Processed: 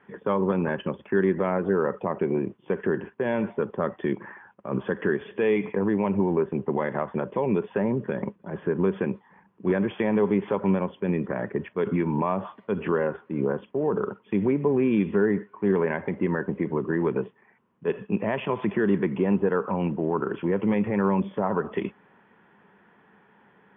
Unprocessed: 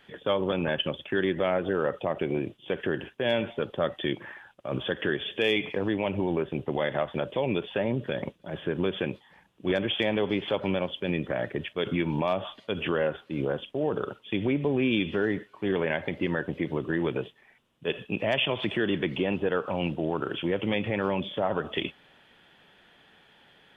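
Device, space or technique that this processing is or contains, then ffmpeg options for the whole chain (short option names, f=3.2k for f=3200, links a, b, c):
bass cabinet: -af "highpass=82,equalizer=f=200:t=q:w=4:g=10,equalizer=f=410:t=q:w=4:g=6,equalizer=f=620:t=q:w=4:g=-4,equalizer=f=1k:t=q:w=4:g=8,lowpass=f=2k:w=0.5412,lowpass=f=2k:w=1.3066"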